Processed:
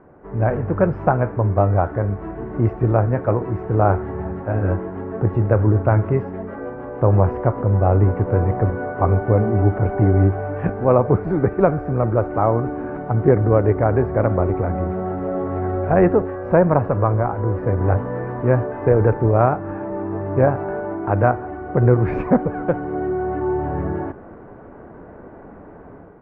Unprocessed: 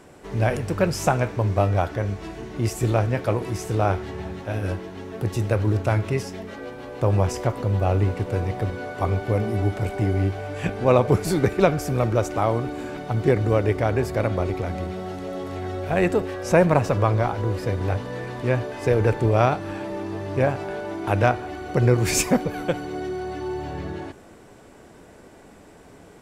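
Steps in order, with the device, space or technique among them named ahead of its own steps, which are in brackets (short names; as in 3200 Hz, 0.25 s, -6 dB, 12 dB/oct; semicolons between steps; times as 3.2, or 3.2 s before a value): action camera in a waterproof case (LPF 1500 Hz 24 dB/oct; AGC gain up to 8 dB; AAC 128 kbps 48000 Hz)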